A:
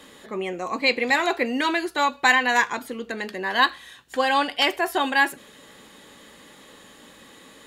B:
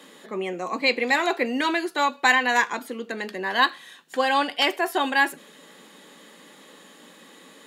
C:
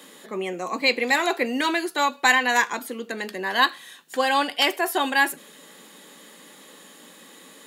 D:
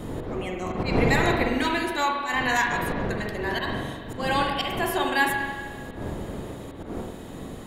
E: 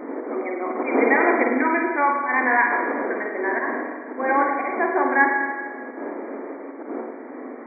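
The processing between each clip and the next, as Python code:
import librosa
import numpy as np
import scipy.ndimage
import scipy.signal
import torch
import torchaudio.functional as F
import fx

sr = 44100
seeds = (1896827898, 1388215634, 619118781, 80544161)

y1 = scipy.signal.sosfilt(scipy.signal.ellip(4, 1.0, 40, 160.0, 'highpass', fs=sr, output='sos'), x)
y2 = fx.high_shelf(y1, sr, hz=7600.0, db=10.5)
y3 = fx.dmg_wind(y2, sr, seeds[0], corner_hz=390.0, level_db=-26.0)
y3 = fx.auto_swell(y3, sr, attack_ms=177.0)
y3 = fx.rev_spring(y3, sr, rt60_s=1.6, pass_ms=(43, 51), chirp_ms=30, drr_db=1.0)
y3 = y3 * librosa.db_to_amplitude(-4.0)
y4 = fx.brickwall_bandpass(y3, sr, low_hz=230.0, high_hz=2400.0)
y4 = y4 * librosa.db_to_amplitude(5.0)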